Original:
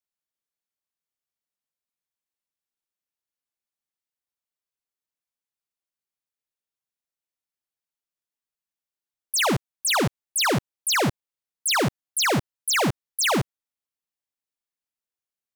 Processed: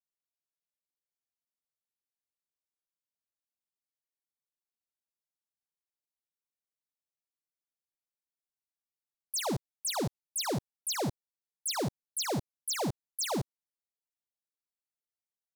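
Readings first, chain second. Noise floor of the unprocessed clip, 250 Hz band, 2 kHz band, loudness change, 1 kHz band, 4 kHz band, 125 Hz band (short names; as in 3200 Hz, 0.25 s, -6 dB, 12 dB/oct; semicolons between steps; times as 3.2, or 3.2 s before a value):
under -85 dBFS, -9.0 dB, -18.5 dB, -10.5 dB, -11.5 dB, -11.5 dB, -9.0 dB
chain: band shelf 1900 Hz -9.5 dB; gain -9 dB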